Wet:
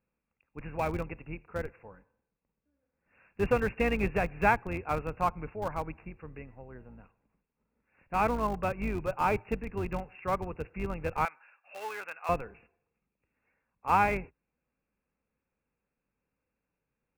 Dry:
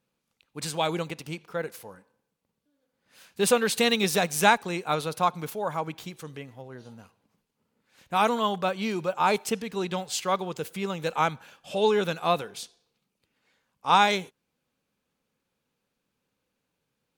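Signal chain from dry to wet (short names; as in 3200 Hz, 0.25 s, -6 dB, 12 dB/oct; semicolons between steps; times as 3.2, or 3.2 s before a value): octaver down 2 oct, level -2 dB; brick-wall FIR low-pass 2800 Hz; in parallel at -7 dB: Schmitt trigger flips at -24 dBFS; 11.25–12.29 on the sum: HPF 1100 Hz 12 dB/oct; gain -5.5 dB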